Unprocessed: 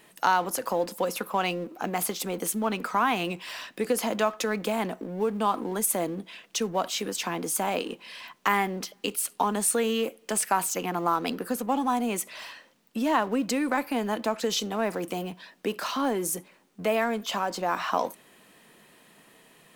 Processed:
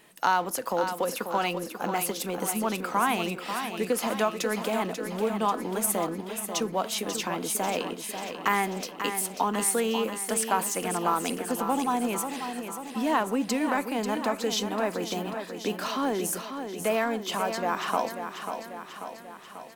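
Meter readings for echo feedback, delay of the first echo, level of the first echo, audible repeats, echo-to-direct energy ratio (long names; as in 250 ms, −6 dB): 59%, 540 ms, −8.0 dB, 6, −6.0 dB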